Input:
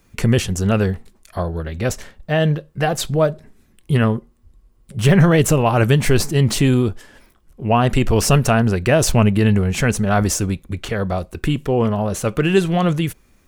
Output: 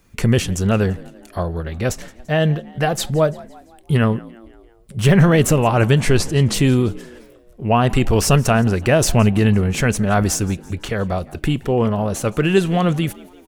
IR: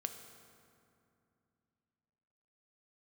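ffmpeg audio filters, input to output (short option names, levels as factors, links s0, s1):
-filter_complex "[0:a]asettb=1/sr,asplit=3[s0][s1][s2];[s0]atrim=end=5.684[s3];[s1]atrim=start=5.68:end=6.54,asetpts=PTS-STARTPTS,afade=t=in:d=0.004:c=qsin,afade=t=out:st=0.856:d=0.004:c=qsin,lowpass=10000[s4];[s2]atrim=start=6.536[s5];[s3][s4]acrossfade=d=0.004:c1=hsin:c2=qsin[s6];[s6][s5]acrossfade=d=0.004:c1=qsin:c2=hsin,asplit=5[s7][s8][s9][s10][s11];[s8]adelay=170,afreqshift=59,volume=0.0794[s12];[s9]adelay=340,afreqshift=118,volume=0.0412[s13];[s10]adelay=510,afreqshift=177,volume=0.0214[s14];[s11]adelay=680,afreqshift=236,volume=0.0112[s15];[s7][s12][s13][s14][s15]amix=inputs=5:normalize=0"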